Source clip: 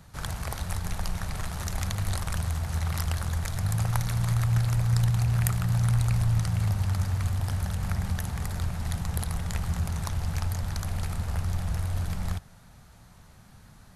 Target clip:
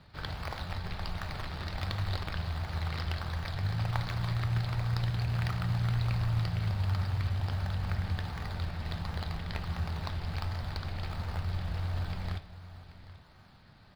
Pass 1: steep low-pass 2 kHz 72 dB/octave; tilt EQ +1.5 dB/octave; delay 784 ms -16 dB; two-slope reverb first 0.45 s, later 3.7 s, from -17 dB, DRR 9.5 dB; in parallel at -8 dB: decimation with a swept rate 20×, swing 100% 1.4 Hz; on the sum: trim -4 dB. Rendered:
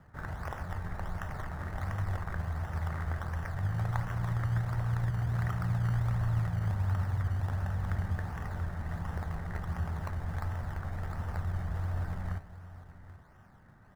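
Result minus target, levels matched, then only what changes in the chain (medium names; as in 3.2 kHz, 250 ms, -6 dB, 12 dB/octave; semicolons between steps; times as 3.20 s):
4 kHz band -14.0 dB
change: steep low-pass 4.9 kHz 72 dB/octave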